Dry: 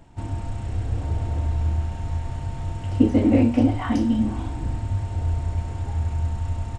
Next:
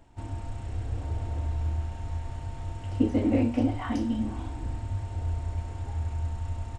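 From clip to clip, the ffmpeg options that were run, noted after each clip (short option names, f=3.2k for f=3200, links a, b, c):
-af "equalizer=f=160:w=2.3:g=-8,volume=-5.5dB"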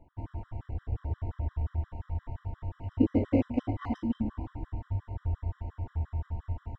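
-af "adynamicsmooth=sensitivity=2.5:basefreq=1.7k,afftfilt=real='re*gt(sin(2*PI*5.7*pts/sr)*(1-2*mod(floor(b*sr/1024/1000),2)),0)':imag='im*gt(sin(2*PI*5.7*pts/sr)*(1-2*mod(floor(b*sr/1024/1000),2)),0)':win_size=1024:overlap=0.75"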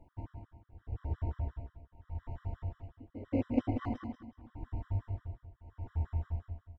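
-af "tremolo=f=0.82:d=0.97,aecho=1:1:187|374|561:0.422|0.114|0.0307,volume=-1.5dB"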